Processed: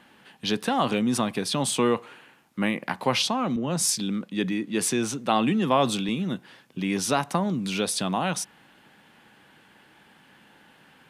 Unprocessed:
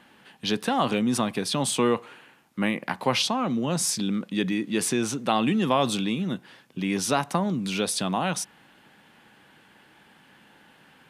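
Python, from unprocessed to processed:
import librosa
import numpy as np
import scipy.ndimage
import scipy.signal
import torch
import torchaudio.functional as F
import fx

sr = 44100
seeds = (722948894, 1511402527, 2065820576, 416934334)

y = fx.band_widen(x, sr, depth_pct=40, at=(3.56, 6.09))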